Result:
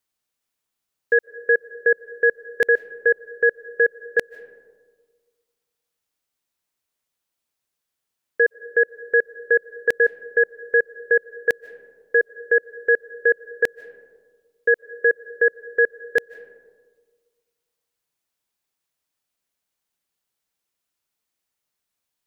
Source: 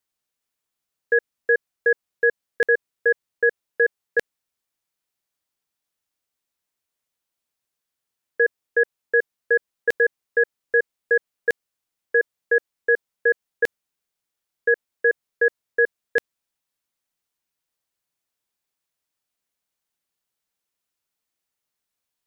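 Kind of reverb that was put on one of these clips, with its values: digital reverb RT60 1.6 s, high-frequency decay 0.3×, pre-delay 0.11 s, DRR 18.5 dB; gain +1.5 dB

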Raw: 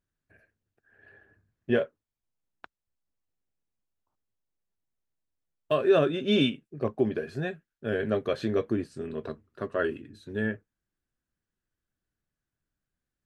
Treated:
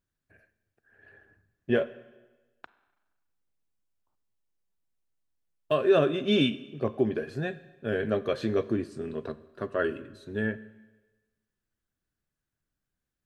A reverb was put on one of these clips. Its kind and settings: Schroeder reverb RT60 1.2 s, combs from 32 ms, DRR 16 dB

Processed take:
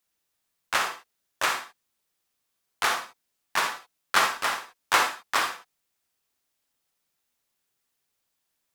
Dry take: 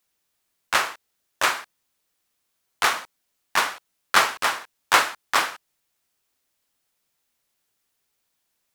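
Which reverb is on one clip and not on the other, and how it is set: non-linear reverb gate 90 ms rising, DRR 5.5 dB; gain -4.5 dB

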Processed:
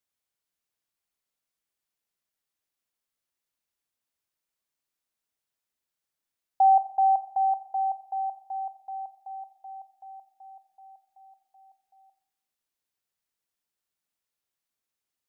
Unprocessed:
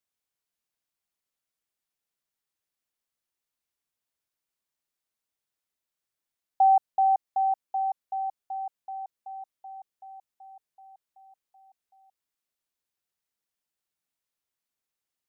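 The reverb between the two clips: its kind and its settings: Schroeder reverb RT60 0.73 s, combs from 27 ms, DRR 11.5 dB

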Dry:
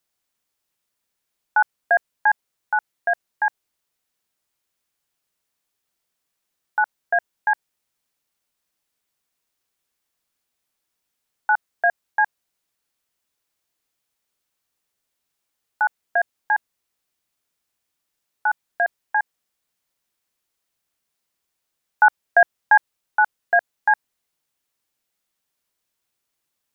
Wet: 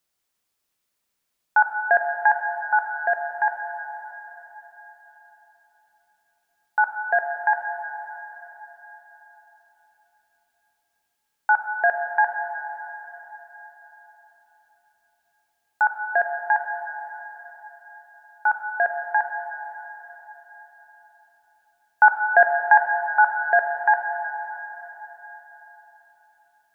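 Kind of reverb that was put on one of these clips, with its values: plate-style reverb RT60 4.2 s, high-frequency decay 0.95×, DRR 5 dB

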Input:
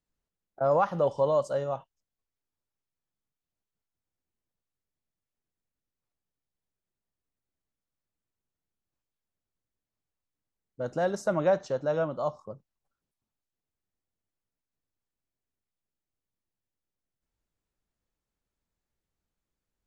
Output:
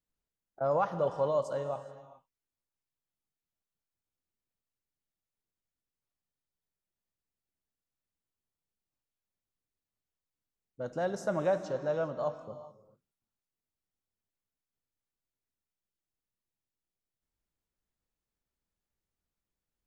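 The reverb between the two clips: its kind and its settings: non-linear reverb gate 0.45 s flat, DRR 10.5 dB; gain -4.5 dB

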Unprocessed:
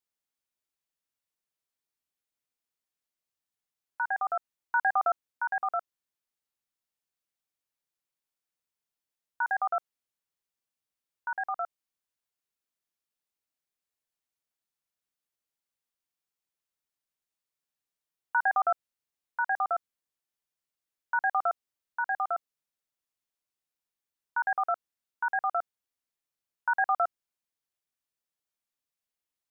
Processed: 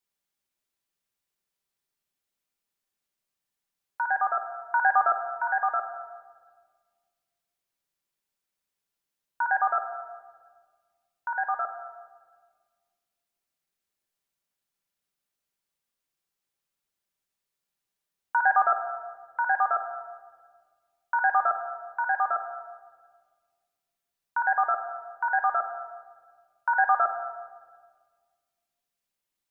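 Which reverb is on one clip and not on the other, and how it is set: shoebox room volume 1800 m³, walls mixed, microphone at 1.2 m; gain +3 dB

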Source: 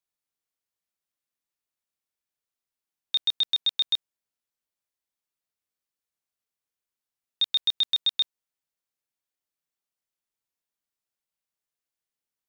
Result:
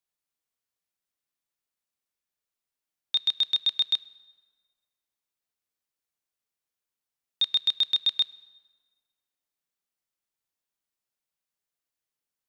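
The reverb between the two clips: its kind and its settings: plate-style reverb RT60 1.7 s, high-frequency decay 0.7×, DRR 18.5 dB

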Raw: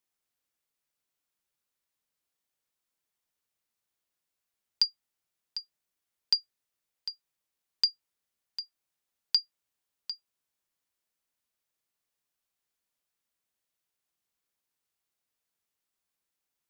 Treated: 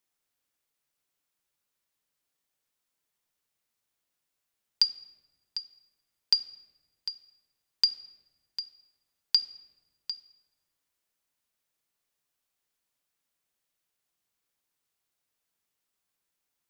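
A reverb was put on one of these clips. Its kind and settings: shoebox room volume 840 m³, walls mixed, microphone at 0.31 m; gain +2.5 dB

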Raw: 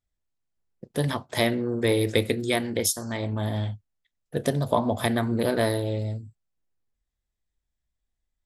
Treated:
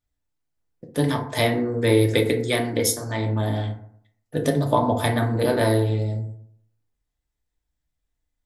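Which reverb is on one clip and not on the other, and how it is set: FDN reverb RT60 0.64 s, low-frequency decay 1.05×, high-frequency decay 0.4×, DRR 2 dB; gain +1 dB

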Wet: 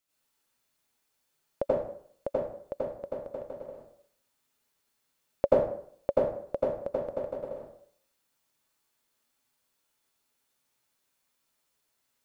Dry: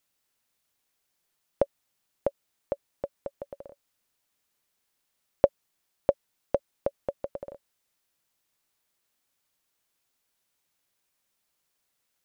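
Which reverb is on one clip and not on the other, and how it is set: plate-style reverb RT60 0.59 s, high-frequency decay 0.7×, pre-delay 75 ms, DRR -8 dB; gain -7 dB

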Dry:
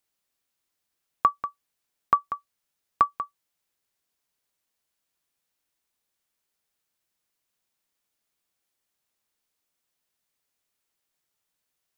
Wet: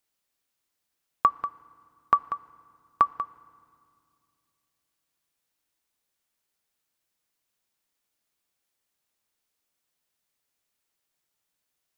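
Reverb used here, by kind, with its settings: FDN reverb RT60 2.2 s, low-frequency decay 1.55×, high-frequency decay 0.8×, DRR 19 dB

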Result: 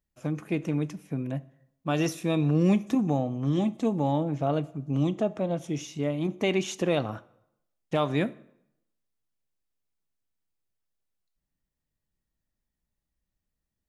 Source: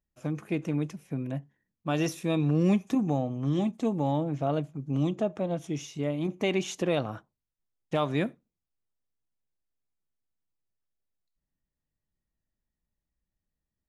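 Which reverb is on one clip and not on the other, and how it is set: plate-style reverb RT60 0.78 s, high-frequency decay 0.8×, DRR 17.5 dB; gain +1.5 dB

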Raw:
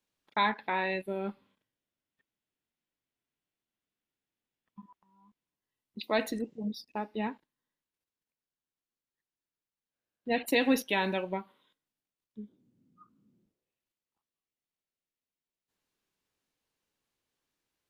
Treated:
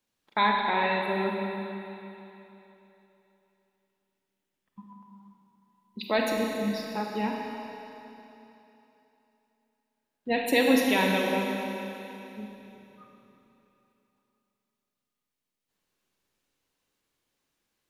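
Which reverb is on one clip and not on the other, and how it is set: Schroeder reverb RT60 3.2 s, combs from 31 ms, DRR 0 dB; gain +2.5 dB

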